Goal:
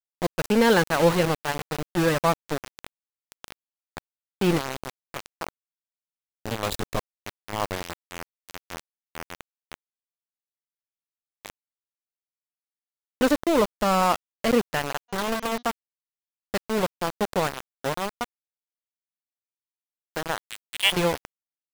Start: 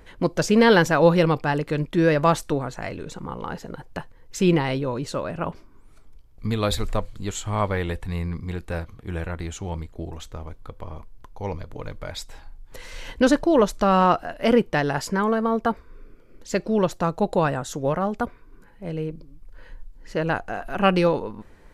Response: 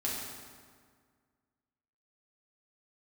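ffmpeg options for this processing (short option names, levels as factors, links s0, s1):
-filter_complex "[0:a]asettb=1/sr,asplit=3[s0][s1][s2];[s0]atrim=end=20.394[s3];[s1]atrim=start=20.39:end=20.92,asetpts=PTS-STARTPTS,afade=t=in:d=0.004:c=qsin,afade=t=out:st=0.526:d=0.004:c=qsin,lowpass=f=3000:t=q:w=0.5098,lowpass=f=3000:t=q:w=0.6013,lowpass=f=3000:t=q:w=0.9,lowpass=f=3000:t=q:w=2.563,afreqshift=-3500[s4];[s2]atrim=start=20.916[s5];[s3][s4]acrossfade=d=0.004:c1=hsin:c2=qsin[s6];[s6][s5]acrossfade=d=0.004:c1=qsin:c2=hsin,aeval=exprs='val(0)*gte(abs(val(0)),0.112)':c=same,asplit=3[s7][s8][s9];[s7]afade=t=out:st=15.08:d=0.02[s10];[s8]bandreject=f=240.3:t=h:w=4,bandreject=f=480.6:t=h:w=4,bandreject=f=720.9:t=h:w=4,bandreject=f=961.2:t=h:w=4,bandreject=f=1201.5:t=h:w=4,bandreject=f=1441.8:t=h:w=4,bandreject=f=1682.1:t=h:w=4,bandreject=f=1922.4:t=h:w=4,bandreject=f=2162.7:t=h:w=4,bandreject=f=2403:t=h:w=4,bandreject=f=2643.3:t=h:w=4,bandreject=f=2883.6:t=h:w=4,bandreject=f=3123.9:t=h:w=4,bandreject=f=3364.2:t=h:w=4,bandreject=f=3604.5:t=h:w=4,bandreject=f=3844.8:t=h:w=4,bandreject=f=4085.1:t=h:w=4,bandreject=f=4325.4:t=h:w=4,bandreject=f=4565.7:t=h:w=4,bandreject=f=4806:t=h:w=4,bandreject=f=5046.3:t=h:w=4,bandreject=f=5286.6:t=h:w=4,bandreject=f=5526.9:t=h:w=4,bandreject=f=5767.2:t=h:w=4,bandreject=f=6007.5:t=h:w=4,bandreject=f=6247.8:t=h:w=4,bandreject=f=6488.1:t=h:w=4,bandreject=f=6728.4:t=h:w=4,afade=t=in:st=15.08:d=0.02,afade=t=out:st=15.61:d=0.02[s11];[s9]afade=t=in:st=15.61:d=0.02[s12];[s10][s11][s12]amix=inputs=3:normalize=0,volume=0.708"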